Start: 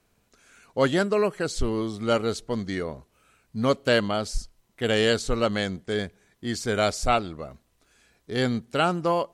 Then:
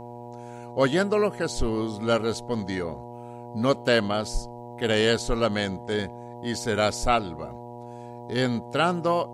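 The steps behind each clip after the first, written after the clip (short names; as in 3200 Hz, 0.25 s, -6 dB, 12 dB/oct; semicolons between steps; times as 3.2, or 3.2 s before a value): buzz 120 Hz, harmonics 8, -40 dBFS -1 dB/oct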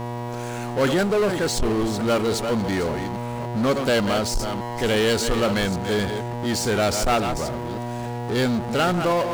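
reverse delay 0.288 s, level -12 dB; power-law curve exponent 0.5; gain -3.5 dB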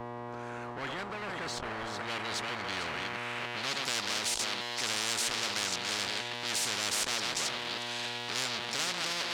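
band-pass sweep 320 Hz -> 3500 Hz, 0.83–4.07; spectral compressor 10:1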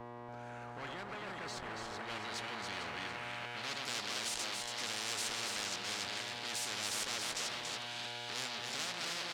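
echo 0.282 s -4.5 dB; gain -7.5 dB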